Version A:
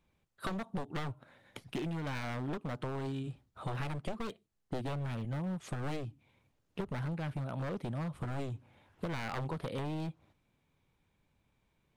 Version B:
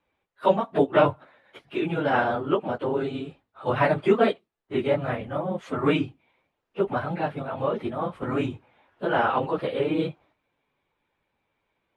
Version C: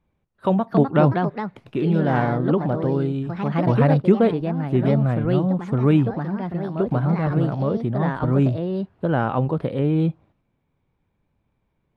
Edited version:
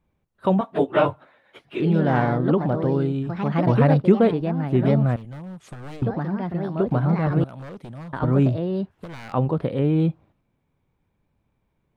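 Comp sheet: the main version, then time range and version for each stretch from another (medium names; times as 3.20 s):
C
0.61–1.80 s: from B
5.16–6.02 s: from A
7.44–8.13 s: from A
8.91–9.34 s: from A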